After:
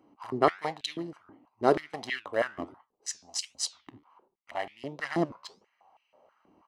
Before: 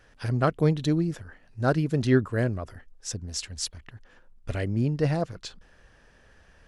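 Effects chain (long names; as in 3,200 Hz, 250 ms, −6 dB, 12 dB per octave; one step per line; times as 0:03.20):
adaptive Wiener filter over 25 samples
comb filter 1 ms, depth 63%
flanger 1.4 Hz, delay 7.4 ms, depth 8 ms, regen +82%
high-pass on a step sequencer 6.2 Hz 300–2,600 Hz
level +4.5 dB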